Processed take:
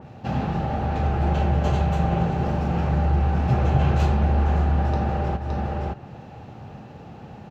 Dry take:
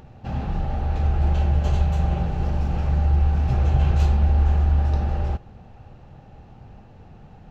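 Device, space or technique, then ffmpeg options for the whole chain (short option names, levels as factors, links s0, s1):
ducked delay: -filter_complex "[0:a]asplit=3[s0][s1][s2];[s1]adelay=566,volume=0.75[s3];[s2]apad=whole_len=355937[s4];[s3][s4]sidechaincompress=threshold=0.0316:ratio=8:attack=9.9:release=254[s5];[s0][s5]amix=inputs=2:normalize=0,highpass=120,adynamicequalizer=threshold=0.00251:dfrequency=2700:dqfactor=0.7:tfrequency=2700:tqfactor=0.7:attack=5:release=100:ratio=0.375:range=3:mode=cutabove:tftype=highshelf,volume=2"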